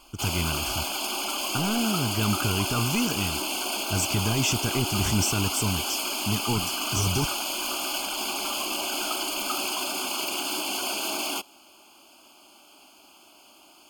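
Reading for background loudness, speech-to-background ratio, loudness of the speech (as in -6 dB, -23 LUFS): -27.5 LUFS, -1.0 dB, -28.5 LUFS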